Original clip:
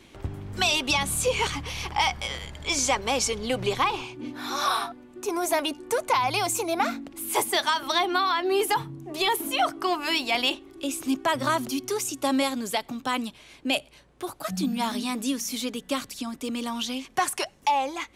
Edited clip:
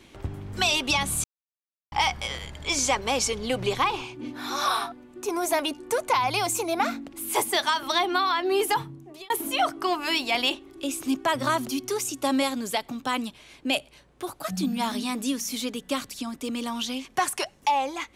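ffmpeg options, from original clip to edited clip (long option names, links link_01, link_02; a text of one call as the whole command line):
ffmpeg -i in.wav -filter_complex "[0:a]asplit=4[link_01][link_02][link_03][link_04];[link_01]atrim=end=1.24,asetpts=PTS-STARTPTS,afade=type=out:start_time=1.236:duration=0.004:curve=hsin[link_05];[link_02]atrim=start=1.24:end=1.92,asetpts=PTS-STARTPTS,volume=0[link_06];[link_03]atrim=start=1.92:end=9.3,asetpts=PTS-STARTPTS,afade=type=in:duration=0.004:curve=hsin,afade=type=out:start_time=6.86:duration=0.52[link_07];[link_04]atrim=start=9.3,asetpts=PTS-STARTPTS,afade=type=in:duration=0.004:curve=hsin[link_08];[link_05][link_06][link_07][link_08]concat=n=4:v=0:a=1" out.wav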